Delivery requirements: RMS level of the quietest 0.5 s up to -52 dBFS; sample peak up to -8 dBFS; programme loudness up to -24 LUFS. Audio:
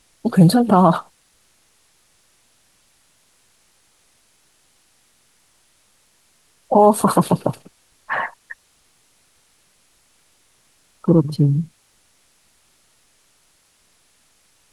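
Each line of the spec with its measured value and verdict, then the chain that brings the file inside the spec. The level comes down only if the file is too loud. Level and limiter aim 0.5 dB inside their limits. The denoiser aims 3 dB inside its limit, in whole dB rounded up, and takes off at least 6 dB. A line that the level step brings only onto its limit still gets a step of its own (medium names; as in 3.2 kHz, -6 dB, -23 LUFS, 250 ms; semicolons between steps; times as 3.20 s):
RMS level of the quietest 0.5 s -60 dBFS: pass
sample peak -2.0 dBFS: fail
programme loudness -17.0 LUFS: fail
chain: trim -7.5 dB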